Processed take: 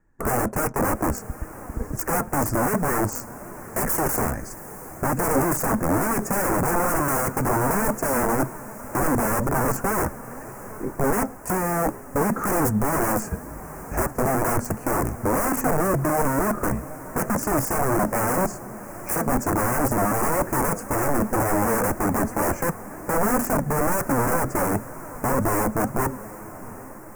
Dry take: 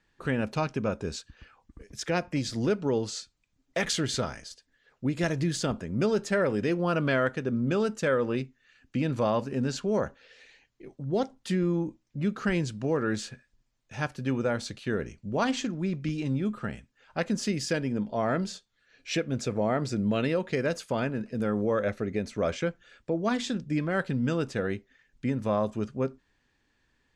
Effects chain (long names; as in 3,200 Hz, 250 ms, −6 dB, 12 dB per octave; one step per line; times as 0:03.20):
low-shelf EQ 210 Hz +6.5 dB
in parallel at −0.5 dB: downward compressor 5 to 1, threshold −36 dBFS, peak gain reduction 15 dB
on the sum: leveller curve on the samples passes 2
wrap-around overflow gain 17.5 dB
on a send: feedback delay with all-pass diffusion 755 ms, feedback 61%, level −16 dB
on the sum: flanger 2 Hz, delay 2.7 ms, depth 2 ms, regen +66%
0:13.27–0:14.07: frequency shifter −55 Hz
Butterworth band-reject 3,600 Hz, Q 0.51
level +6 dB